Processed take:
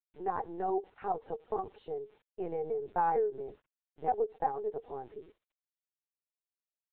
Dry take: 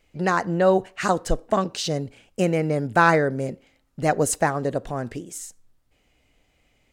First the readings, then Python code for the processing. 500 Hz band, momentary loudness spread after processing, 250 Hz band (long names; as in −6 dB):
−11.5 dB, 14 LU, −19.0 dB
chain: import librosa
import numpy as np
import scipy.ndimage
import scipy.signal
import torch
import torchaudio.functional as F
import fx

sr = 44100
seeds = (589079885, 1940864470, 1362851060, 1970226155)

y = fx.double_bandpass(x, sr, hz=590.0, octaves=0.84)
y = fx.quant_dither(y, sr, seeds[0], bits=10, dither='none')
y = fx.lpc_vocoder(y, sr, seeds[1], excitation='pitch_kept', order=16)
y = F.gain(torch.from_numpy(y), -4.0).numpy()